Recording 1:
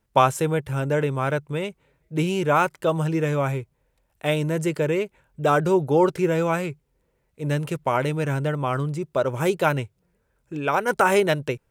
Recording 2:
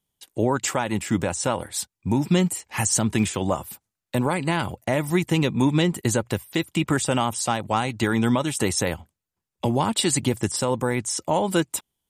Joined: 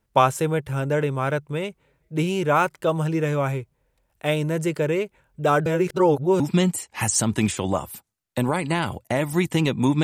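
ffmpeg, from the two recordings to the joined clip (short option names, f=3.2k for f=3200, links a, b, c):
-filter_complex "[0:a]apad=whole_dur=10.03,atrim=end=10.03,asplit=2[a][b];[a]atrim=end=5.662[c];[b]atrim=start=5.658:end=6.402,asetpts=PTS-STARTPTS,areverse[d];[1:a]atrim=start=2.168:end=5.8[e];[c][d]acrossfade=d=0.004:c1=hsin:c2=hsin[f];[f][e]acrossfade=d=0.004:c1=hsin:c2=hsin"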